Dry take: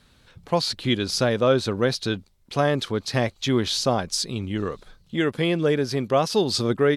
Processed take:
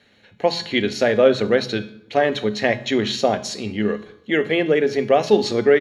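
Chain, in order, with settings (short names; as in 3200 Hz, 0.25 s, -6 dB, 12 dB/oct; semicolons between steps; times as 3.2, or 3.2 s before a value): resonator 210 Hz, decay 0.6 s, harmonics all, mix 70%; tempo 1.2×; reverb RT60 0.85 s, pre-delay 3 ms, DRR 14.5 dB; gain +4 dB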